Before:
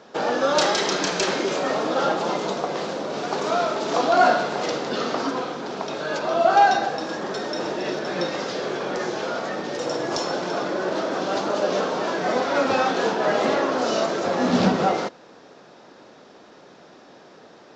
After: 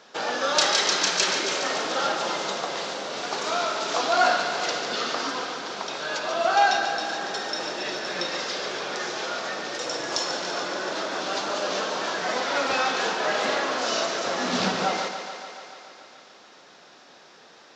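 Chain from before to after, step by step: tilt shelf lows -7 dB; on a send: thinning echo 0.143 s, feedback 75%, high-pass 180 Hz, level -9 dB; on the sum: gain -3.5 dB

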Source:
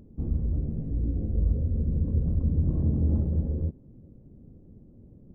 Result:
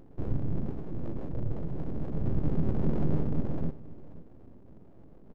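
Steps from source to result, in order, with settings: 0.71–2.21 tone controls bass -5 dB, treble +3 dB; full-wave rectifier; echo 0.53 s -17.5 dB

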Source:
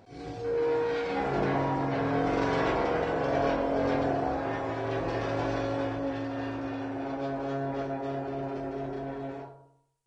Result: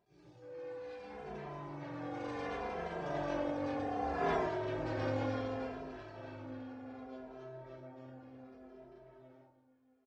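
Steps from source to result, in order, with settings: Doppler pass-by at 4.33, 19 m/s, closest 1.9 m; in parallel at +3 dB: negative-ratio compressor -48 dBFS, ratio -0.5; on the sum: feedback echo 0.624 s, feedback 41%, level -17 dB; endless flanger 2.6 ms -0.67 Hz; gain +4.5 dB

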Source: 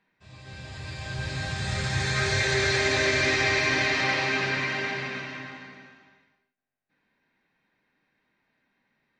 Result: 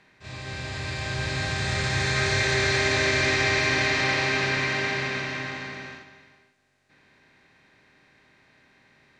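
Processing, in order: per-bin compression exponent 0.6; gate -40 dBFS, range -6 dB; gain -1.5 dB

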